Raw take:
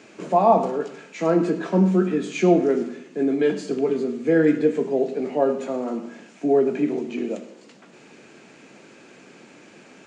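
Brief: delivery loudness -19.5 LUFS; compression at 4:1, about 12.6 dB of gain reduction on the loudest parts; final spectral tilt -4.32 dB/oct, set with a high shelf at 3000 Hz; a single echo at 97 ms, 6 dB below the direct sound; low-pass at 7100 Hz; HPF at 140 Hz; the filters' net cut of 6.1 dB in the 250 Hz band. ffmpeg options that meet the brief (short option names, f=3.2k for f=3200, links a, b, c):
-af "highpass=140,lowpass=7.1k,equalizer=f=250:t=o:g=-8.5,highshelf=f=3k:g=4.5,acompressor=threshold=-28dB:ratio=4,aecho=1:1:97:0.501,volume=12dB"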